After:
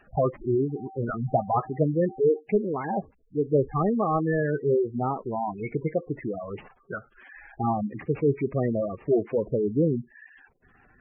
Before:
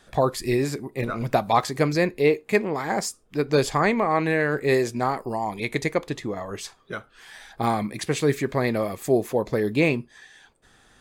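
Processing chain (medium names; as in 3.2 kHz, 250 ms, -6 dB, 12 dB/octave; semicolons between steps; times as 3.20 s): CVSD coder 16 kbps; 0.59–2.38 s: whistle 770 Hz -43 dBFS; spectral gate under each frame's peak -10 dB strong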